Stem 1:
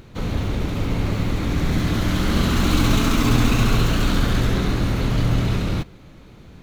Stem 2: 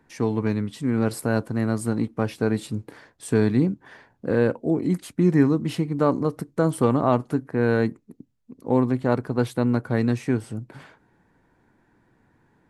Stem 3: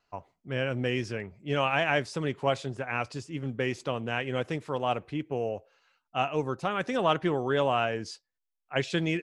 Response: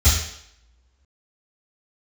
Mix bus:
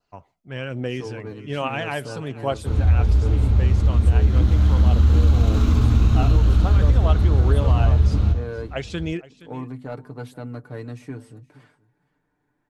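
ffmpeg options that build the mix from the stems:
-filter_complex "[0:a]lowpass=f=3600:p=1,adelay=2500,volume=0.473,asplit=3[s0][s1][s2];[s1]volume=0.0631[s3];[s2]volume=0.126[s4];[1:a]bandreject=f=50:t=h:w=6,bandreject=f=100:t=h:w=6,bandreject=f=150:t=h:w=6,bandreject=f=200:t=h:w=6,bandreject=f=250:t=h:w=6,aecho=1:1:6.8:0.64,acontrast=87,adelay=800,volume=0.119,asplit=2[s5][s6];[s6]volume=0.0841[s7];[2:a]aphaser=in_gain=1:out_gain=1:delay=1.6:decay=0.33:speed=1.2:type=triangular,volume=0.944,asplit=2[s8][s9];[s9]volume=0.119[s10];[3:a]atrim=start_sample=2205[s11];[s3][s11]afir=irnorm=-1:irlink=0[s12];[s4][s7][s10]amix=inputs=3:normalize=0,aecho=0:1:471:1[s13];[s0][s5][s8][s12][s13]amix=inputs=5:normalize=0,adynamicequalizer=threshold=0.00447:dfrequency=2100:dqfactor=1.6:tfrequency=2100:tqfactor=1.6:attack=5:release=100:ratio=0.375:range=3:mode=cutabove:tftype=bell,acompressor=threshold=0.251:ratio=3"

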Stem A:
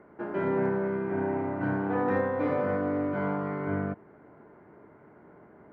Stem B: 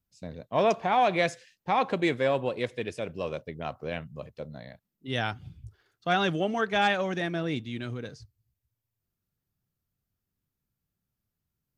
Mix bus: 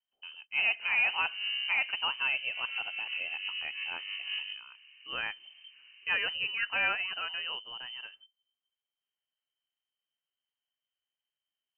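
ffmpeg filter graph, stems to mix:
-filter_complex "[0:a]equalizer=f=2000:t=o:w=1.7:g=-12,bandreject=f=50:t=h:w=6,bandreject=f=100:t=h:w=6,bandreject=f=150:t=h:w=6,bandreject=f=200:t=h:w=6,bandreject=f=250:t=h:w=6,bandreject=f=300:t=h:w=6,volume=12.6,asoftclip=hard,volume=0.0794,adelay=600,volume=1.12[s0];[1:a]volume=0.668,asplit=2[s1][s2];[s2]apad=whole_len=278970[s3];[s0][s3]sidechaincompress=threshold=0.00501:ratio=4:attack=16:release=141[s4];[s4][s1]amix=inputs=2:normalize=0,lowshelf=f=390:g=-6,lowpass=f=2700:t=q:w=0.5098,lowpass=f=2700:t=q:w=0.6013,lowpass=f=2700:t=q:w=0.9,lowpass=f=2700:t=q:w=2.563,afreqshift=-3200"

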